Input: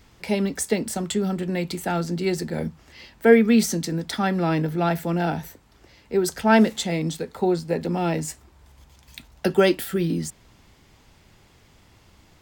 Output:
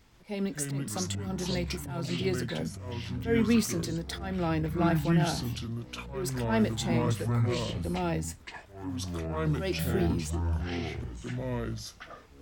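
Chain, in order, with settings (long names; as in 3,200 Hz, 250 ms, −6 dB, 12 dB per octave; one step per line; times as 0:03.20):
volume swells 199 ms
delay with pitch and tempo change per echo 142 ms, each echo −6 semitones, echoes 3
level −7 dB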